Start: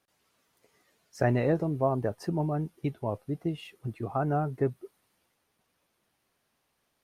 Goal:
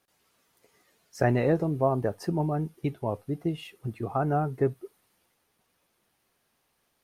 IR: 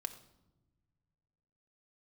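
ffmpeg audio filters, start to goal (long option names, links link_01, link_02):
-filter_complex "[0:a]asplit=2[link_01][link_02];[1:a]atrim=start_sample=2205,atrim=end_sample=3528,highshelf=frequency=7300:gain=11[link_03];[link_02][link_03]afir=irnorm=-1:irlink=0,volume=-9dB[link_04];[link_01][link_04]amix=inputs=2:normalize=0"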